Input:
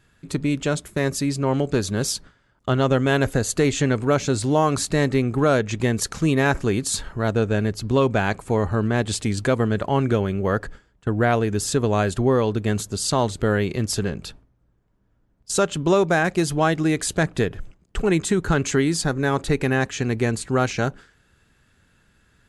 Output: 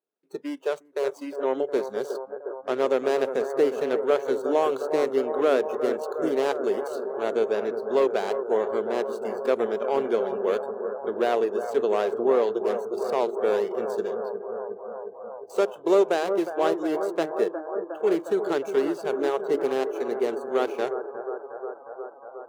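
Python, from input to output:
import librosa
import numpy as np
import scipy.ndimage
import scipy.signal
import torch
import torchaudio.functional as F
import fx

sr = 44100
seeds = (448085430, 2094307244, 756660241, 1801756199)

y = scipy.ndimage.median_filter(x, 25, mode='constant')
y = fx.ladder_highpass(y, sr, hz=330.0, resonance_pct=40)
y = fx.echo_bbd(y, sr, ms=359, stages=4096, feedback_pct=83, wet_db=-9.0)
y = fx.noise_reduce_blind(y, sr, reduce_db=19)
y = F.gain(torch.from_numpy(y), 3.5).numpy()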